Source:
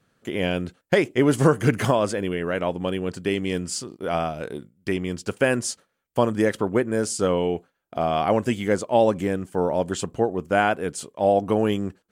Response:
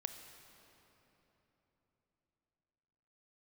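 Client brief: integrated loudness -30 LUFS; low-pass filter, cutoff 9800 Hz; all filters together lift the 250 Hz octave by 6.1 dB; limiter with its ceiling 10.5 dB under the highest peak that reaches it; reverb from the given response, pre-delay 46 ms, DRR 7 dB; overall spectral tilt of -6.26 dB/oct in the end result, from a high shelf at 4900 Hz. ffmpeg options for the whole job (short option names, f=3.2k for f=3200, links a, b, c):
-filter_complex "[0:a]lowpass=9.8k,equalizer=f=250:t=o:g=8,highshelf=f=4.9k:g=-4.5,alimiter=limit=-13dB:level=0:latency=1,asplit=2[a][b];[1:a]atrim=start_sample=2205,adelay=46[c];[b][c]afir=irnorm=-1:irlink=0,volume=-5.5dB[d];[a][d]amix=inputs=2:normalize=0,volume=-5.5dB"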